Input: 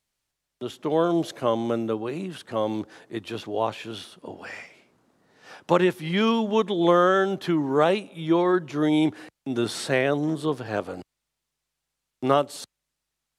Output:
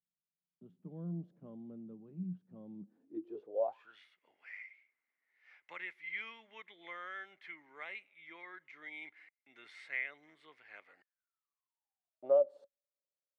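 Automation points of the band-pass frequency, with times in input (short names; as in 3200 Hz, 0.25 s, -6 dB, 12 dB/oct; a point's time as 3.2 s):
band-pass, Q 16
2.77 s 180 Hz
3.62 s 570 Hz
3.99 s 2100 Hz
10.83 s 2100 Hz
12.33 s 560 Hz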